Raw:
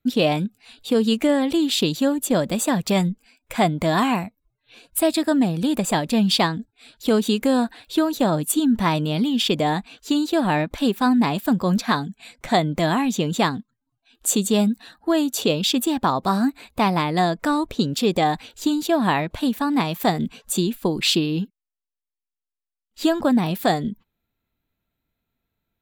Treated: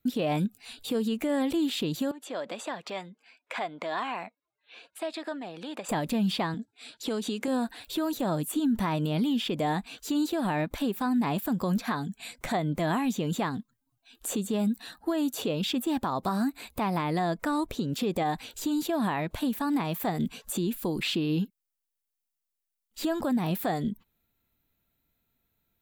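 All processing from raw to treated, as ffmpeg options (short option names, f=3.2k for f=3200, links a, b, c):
-filter_complex "[0:a]asettb=1/sr,asplit=3[a][b][c];[a]atrim=end=2.114[d];[b]atrim=start=2.11:end=5.89,asetpts=PTS-STARTPTS,afade=t=in:d=0.004:c=qsin,afade=t=out:st=3.776:d=0.004:c=qsin,acompressor=threshold=-26dB:ratio=5:attack=3.2:release=140:knee=1:detection=peak,highpass=510,lowpass=3.1k[e];[c]atrim=start=5.886[f];[d][e]acrossfade=d=0.004:c1=hsin:c2=qsin[g];[g][f]acrossfade=d=0.004:c1=qsin:c2=hsin,asettb=1/sr,asplit=3[h][i][j];[h]atrim=end=6.544[k];[i]atrim=start=6.54:end=7.48,asetpts=PTS-STARTPTS,afade=t=in:d=0.004:c=qsin,afade=t=out:st=0.936:d=0.004:c=qsin,highpass=180,lowpass=7.8k,acompressor=threshold=-27dB:ratio=8:attack=3.2:release=140:knee=1:detection=peak[l];[j]atrim=start=7.476[m];[k][l]acrossfade=d=0.004:c1=hsin:c2=qsin[n];[n][m]acrossfade=d=0.004:c1=qsin:c2=hsin,acrossover=split=2600[o][p];[p]acompressor=threshold=-40dB:ratio=4:attack=1:release=60[q];[o][q]amix=inputs=2:normalize=0,highshelf=f=7.5k:g=11,alimiter=limit=-20dB:level=0:latency=1:release=236"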